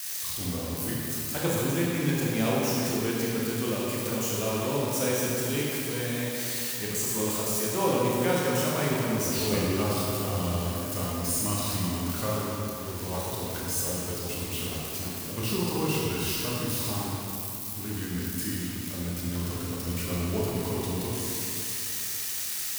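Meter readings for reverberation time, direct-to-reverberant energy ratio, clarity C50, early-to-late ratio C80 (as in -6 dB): 2.8 s, -5.5 dB, -3.0 dB, -1.0 dB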